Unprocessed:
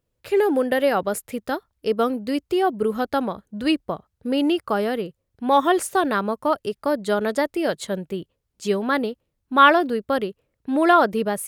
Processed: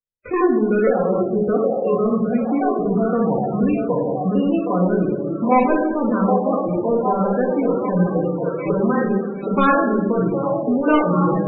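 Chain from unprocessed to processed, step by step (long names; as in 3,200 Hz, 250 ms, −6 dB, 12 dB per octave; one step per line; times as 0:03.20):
pitch shifter swept by a sawtooth −4.5 semitones, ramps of 870 ms
high-frequency loss of the air 410 metres
in parallel at −5 dB: hard clipping −18 dBFS, distortion −11 dB
on the sum: output level in coarse steps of 15 dB
high-shelf EQ 7,200 Hz −5.5 dB
leveller curve on the samples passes 3
downward expander −37 dBFS
on a send: echo through a band-pass that steps 768 ms, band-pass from 540 Hz, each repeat 0.7 octaves, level −3 dB
on the sum: rectangular room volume 500 cubic metres, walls mixed, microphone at 1.9 metres
spectral peaks only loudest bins 32
multiband upward and downward compressor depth 40%
level −5 dB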